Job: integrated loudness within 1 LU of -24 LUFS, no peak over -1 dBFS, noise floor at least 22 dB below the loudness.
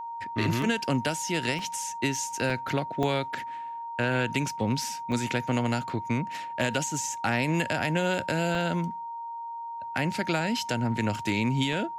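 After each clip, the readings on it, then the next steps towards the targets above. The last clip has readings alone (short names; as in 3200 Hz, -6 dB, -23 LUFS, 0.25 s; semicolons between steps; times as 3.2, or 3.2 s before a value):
dropouts 8; longest dropout 2.4 ms; steady tone 930 Hz; tone level -34 dBFS; loudness -28.5 LUFS; peak -13.5 dBFS; loudness target -24.0 LUFS
-> interpolate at 0.62/1.59/2.5/3.03/5.12/8.55/11.19/11.73, 2.4 ms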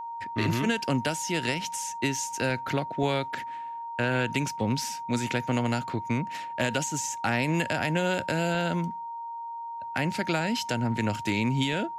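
dropouts 0; steady tone 930 Hz; tone level -34 dBFS
-> notch 930 Hz, Q 30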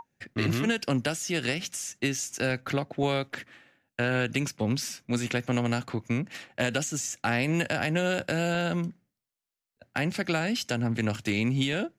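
steady tone none; loudness -29.0 LUFS; peak -14.5 dBFS; loudness target -24.0 LUFS
-> gain +5 dB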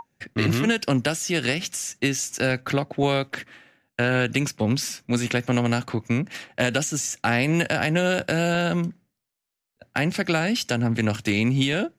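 loudness -24.0 LUFS; peak -9.5 dBFS; noise floor -83 dBFS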